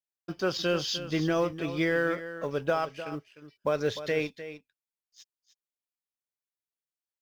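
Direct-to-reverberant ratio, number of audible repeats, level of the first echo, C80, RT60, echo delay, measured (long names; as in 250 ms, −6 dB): no reverb audible, 1, −12.5 dB, no reverb audible, no reverb audible, 303 ms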